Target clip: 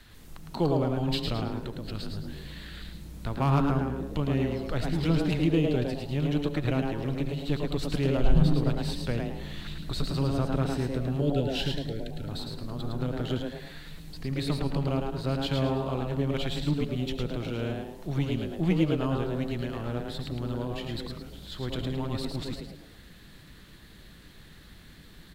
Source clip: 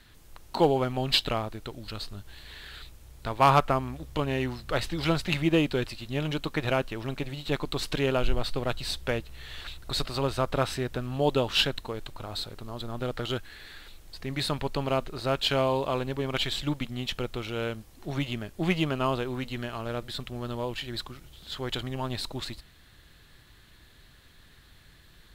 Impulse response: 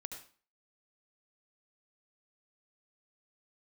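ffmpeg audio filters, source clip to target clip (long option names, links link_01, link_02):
-filter_complex "[0:a]acrossover=split=300[link_01][link_02];[link_02]acompressor=threshold=-54dB:ratio=1.5[link_03];[link_01][link_03]amix=inputs=2:normalize=0,asettb=1/sr,asplit=3[link_04][link_05][link_06];[link_04]atrim=end=11.214[link_07];[link_05]atrim=start=11.21:end=12.29,asetpts=PTS-STARTPTS,afade=type=in:duration=0.004:curve=qsin,afade=type=out:start_time=1.076:duration=0.004:curve=qsin,asuperstop=centerf=910:order=20:qfactor=1.3[link_08];[link_06]atrim=start=12.286[link_09];[link_07][link_08]acrossfade=duration=0.004:curve1=hsin:curve2=qsin[link_10];[link_10][link_09]acrossfade=duration=0.004:curve1=qsin:curve2=hsin,asplit=5[link_11][link_12][link_13][link_14][link_15];[link_12]adelay=108,afreqshift=140,volume=-4.5dB[link_16];[link_13]adelay=216,afreqshift=280,volume=-14.1dB[link_17];[link_14]adelay=324,afreqshift=420,volume=-23.8dB[link_18];[link_15]adelay=432,afreqshift=560,volume=-33.4dB[link_19];[link_11][link_16][link_17][link_18][link_19]amix=inputs=5:normalize=0,asplit=2[link_20][link_21];[1:a]atrim=start_sample=2205,lowshelf=frequency=400:gain=6.5[link_22];[link_21][link_22]afir=irnorm=-1:irlink=0,volume=-4.5dB[link_23];[link_20][link_23]amix=inputs=2:normalize=0,volume=-1dB"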